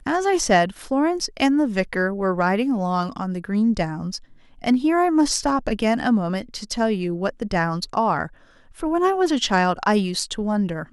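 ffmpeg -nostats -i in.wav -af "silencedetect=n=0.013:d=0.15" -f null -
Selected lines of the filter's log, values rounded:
silence_start: 4.23
silence_end: 4.59 | silence_duration: 0.35
silence_start: 8.28
silence_end: 8.71 | silence_duration: 0.44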